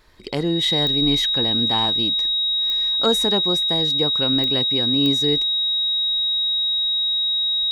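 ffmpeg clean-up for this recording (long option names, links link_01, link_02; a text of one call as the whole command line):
ffmpeg -i in.wav -af "adeclick=threshold=4,bandreject=frequency=3800:width=30" out.wav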